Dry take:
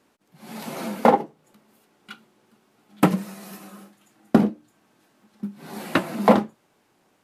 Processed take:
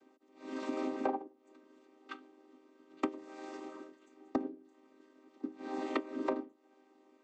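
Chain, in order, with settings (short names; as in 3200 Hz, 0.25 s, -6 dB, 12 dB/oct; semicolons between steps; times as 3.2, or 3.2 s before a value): chord vocoder minor triad, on C4; compressor 8:1, threshold -32 dBFS, peak gain reduction 21 dB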